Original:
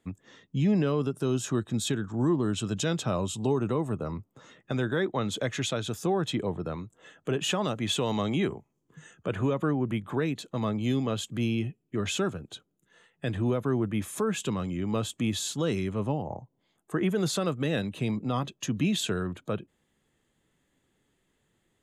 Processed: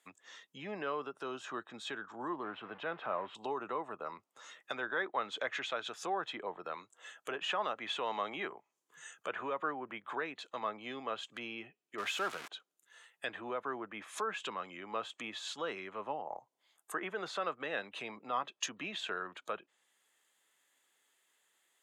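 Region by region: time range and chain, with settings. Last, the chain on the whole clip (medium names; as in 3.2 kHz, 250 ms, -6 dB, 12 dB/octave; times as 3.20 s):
2.43–3.35 s: jump at every zero crossing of -36.5 dBFS + distance through air 460 m
11.98–12.48 s: zero-crossing glitches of -24 dBFS + treble shelf 8.1 kHz +5.5 dB + level flattener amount 50%
whole clip: low-pass that closes with the level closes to 1.9 kHz, closed at -26.5 dBFS; high-pass 890 Hz 12 dB/octave; treble shelf 9.3 kHz +9 dB; trim +1.5 dB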